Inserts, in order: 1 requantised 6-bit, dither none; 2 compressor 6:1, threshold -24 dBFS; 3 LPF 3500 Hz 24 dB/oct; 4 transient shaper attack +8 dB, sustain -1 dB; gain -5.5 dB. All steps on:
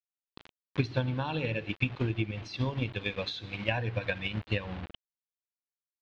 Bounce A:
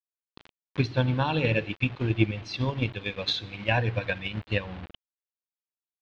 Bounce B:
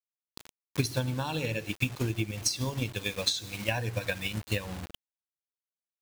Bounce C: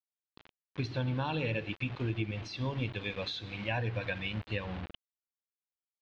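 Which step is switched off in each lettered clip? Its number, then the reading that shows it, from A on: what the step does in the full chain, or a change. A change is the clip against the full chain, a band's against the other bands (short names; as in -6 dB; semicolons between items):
2, mean gain reduction 3.5 dB; 3, 4 kHz band +5.5 dB; 4, crest factor change -4.5 dB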